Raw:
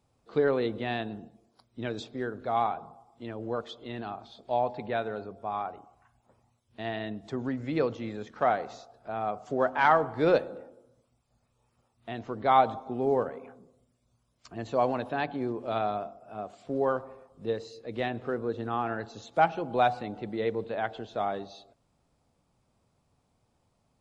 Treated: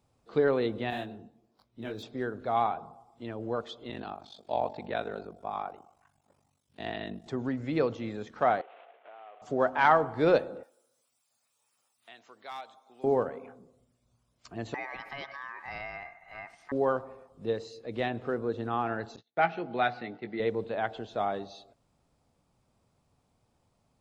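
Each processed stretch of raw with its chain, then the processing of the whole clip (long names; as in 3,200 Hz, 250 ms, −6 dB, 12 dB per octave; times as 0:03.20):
0:00.90–0:02.03: running median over 5 samples + micro pitch shift up and down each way 49 cents
0:03.90–0:07.27: high-pass filter 97 Hz + high-shelf EQ 4,100 Hz +7.5 dB + ring modulation 24 Hz
0:08.61–0:09.42: variable-slope delta modulation 16 kbit/s + high-pass filter 410 Hz 24 dB per octave + downward compressor 5 to 1, threshold −48 dBFS
0:10.63–0:13.04: first difference + gain into a clipping stage and back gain 32 dB + multiband upward and downward compressor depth 40%
0:14.74–0:16.72: parametric band 320 Hz −7.5 dB 0.49 octaves + ring modulation 1,400 Hz + downward compressor 2.5 to 1, threshold −38 dBFS
0:19.16–0:20.40: noise gate −44 dBFS, range −33 dB + loudspeaker in its box 180–4,700 Hz, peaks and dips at 280 Hz −5 dB, 540 Hz −8 dB, 1,000 Hz −8 dB, 2,000 Hz +7 dB, 3,200 Hz −3 dB + double-tracking delay 17 ms −9 dB
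whole clip: no processing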